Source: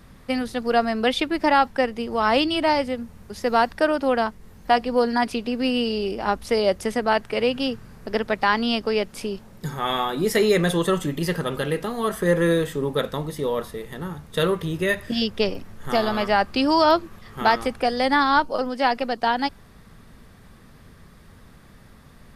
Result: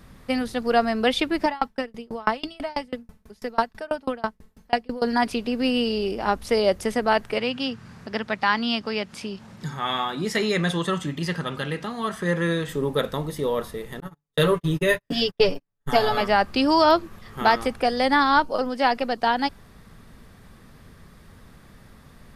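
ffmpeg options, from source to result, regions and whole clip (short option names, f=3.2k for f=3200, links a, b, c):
-filter_complex "[0:a]asettb=1/sr,asplit=3[a][b][c];[a]atrim=end=1.454[d];[b]atrim=start=1.45:end=5.02,asetpts=PTS-STARTPTS,afade=t=in:d=0.004:c=qsin,afade=t=out:st=3.566:d=0.004:c=qsin,aecho=1:1:4.6:0.53,atrim=end_sample=157437,aeval=exprs='val(0)*pow(10,-31*if(lt(mod(6.1*n/s,1),2*abs(6.1)/1000),1-mod(6.1*n/s,1)/(2*abs(6.1)/1000),(mod(6.1*n/s,1)-2*abs(6.1)/1000)/(1-2*abs(6.1)/1000))/20)':c=same[e];[c]atrim=start=5.016[f];[d][e]acrossfade=d=0.004:c1=hsin:c2=qsin[g];[g][f]acrossfade=d=0.004:c1=qsin:c2=hsin,asettb=1/sr,asplit=3[h][i][j];[h]atrim=end=7.384[k];[i]atrim=start=7.38:end=12.69,asetpts=PTS-STARTPTS,afade=t=in:d=0.004:c=qsin,afade=t=out:st=5.306:d=0.004:c=qsin,equalizer=f=450:t=o:w=1.2:g=-7.5,acompressor=mode=upward:threshold=-32dB:ratio=2.5:attack=3.2:release=140:knee=2.83:detection=peak,highpass=100,lowpass=7.1k[l];[j]atrim=start=12.686[m];[k][l]acrossfade=d=0.004:c1=hsin:c2=qsin[n];[n][m]acrossfade=d=0.004:c1=qsin:c2=hsin,asettb=1/sr,asplit=3[o][p][q];[o]atrim=end=14.004[r];[p]atrim=start=14:end=16.21,asetpts=PTS-STARTPTS,afade=t=in:d=0.004:c=qsin,afade=t=out:st=2.206:d=0.004:c=qsin,agate=range=-45dB:threshold=-29dB:ratio=16:release=100:detection=peak,aecho=1:1:7:0.83,atrim=end_sample=97461[s];[q]atrim=start=16.206[t];[r][s]acrossfade=d=0.004:c1=hsin:c2=qsin[u];[u][t]acrossfade=d=0.004:c1=qsin:c2=hsin"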